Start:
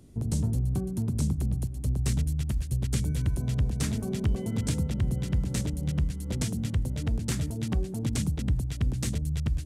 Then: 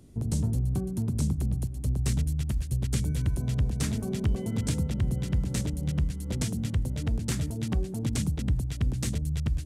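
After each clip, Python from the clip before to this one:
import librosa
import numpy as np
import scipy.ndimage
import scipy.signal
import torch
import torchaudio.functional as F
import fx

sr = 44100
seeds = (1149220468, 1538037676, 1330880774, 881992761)

y = x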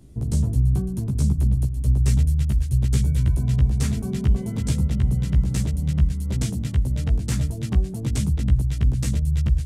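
y = fx.low_shelf(x, sr, hz=120.0, db=7.0)
y = fx.doubler(y, sr, ms=15.0, db=-2.5)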